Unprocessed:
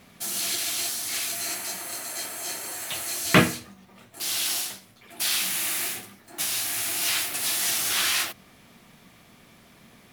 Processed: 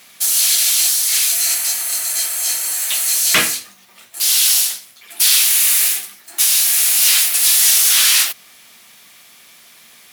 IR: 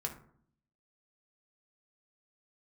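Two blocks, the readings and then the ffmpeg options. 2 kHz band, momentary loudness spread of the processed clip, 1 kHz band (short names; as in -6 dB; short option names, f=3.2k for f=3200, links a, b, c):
+7.0 dB, 8 LU, +2.0 dB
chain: -filter_complex "[0:a]asplit=2[a][b];[b]highpass=f=720:p=1,volume=15dB,asoftclip=type=tanh:threshold=-2.5dB[c];[a][c]amix=inputs=2:normalize=0,lowpass=f=5.1k:p=1,volume=-6dB,crystalizer=i=7:c=0,volume=-8.5dB"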